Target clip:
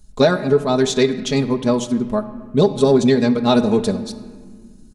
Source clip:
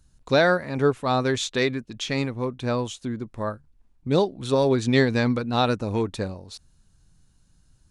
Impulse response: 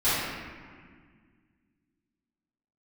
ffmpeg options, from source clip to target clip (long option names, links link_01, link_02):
-filter_complex "[0:a]atempo=1.6,equalizer=frequency=1800:width=0.69:gain=-8,aecho=1:1:4.8:0.72,alimiter=limit=-12dB:level=0:latency=1:release=481,asplit=2[link_01][link_02];[1:a]atrim=start_sample=2205[link_03];[link_02][link_03]afir=irnorm=-1:irlink=0,volume=-26dB[link_04];[link_01][link_04]amix=inputs=2:normalize=0,acontrast=57,volume=2dB"